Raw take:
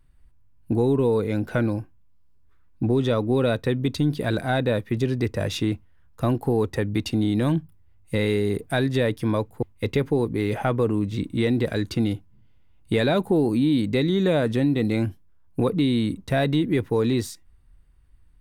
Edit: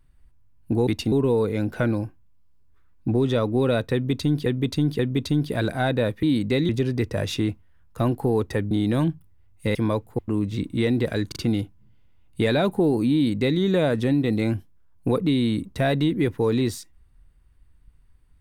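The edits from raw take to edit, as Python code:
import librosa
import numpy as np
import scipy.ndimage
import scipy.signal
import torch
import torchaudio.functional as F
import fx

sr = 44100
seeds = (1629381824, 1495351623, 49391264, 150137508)

y = fx.edit(x, sr, fx.repeat(start_s=3.68, length_s=0.53, count=3),
    fx.move(start_s=6.94, length_s=0.25, to_s=0.87),
    fx.cut(start_s=8.23, length_s=0.96),
    fx.cut(start_s=9.72, length_s=1.16),
    fx.stutter(start_s=11.88, slice_s=0.04, count=3),
    fx.duplicate(start_s=13.66, length_s=0.46, to_s=4.92), tone=tone)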